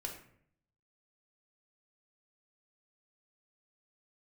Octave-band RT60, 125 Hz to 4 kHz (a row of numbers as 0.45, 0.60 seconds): 0.90, 0.80, 0.70, 0.55, 0.60, 0.40 seconds